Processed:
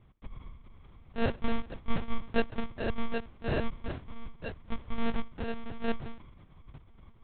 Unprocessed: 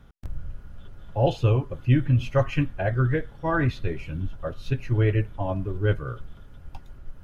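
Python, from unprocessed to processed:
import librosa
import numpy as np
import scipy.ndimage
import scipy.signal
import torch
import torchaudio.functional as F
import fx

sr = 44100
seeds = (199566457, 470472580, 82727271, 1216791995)

y = fx.wiener(x, sr, points=25)
y = scipy.signal.sosfilt(scipy.signal.butter(2, 68.0, 'highpass', fs=sr, output='sos'), y)
y = fx.peak_eq(y, sr, hz=360.0, db=-8.0, octaves=2.5)
y = fx.hum_notches(y, sr, base_hz=50, count=9)
y = fx.sample_hold(y, sr, seeds[0], rate_hz=1100.0, jitter_pct=0)
y = fx.lpc_monotone(y, sr, seeds[1], pitch_hz=230.0, order=10)
y = fx.end_taper(y, sr, db_per_s=550.0)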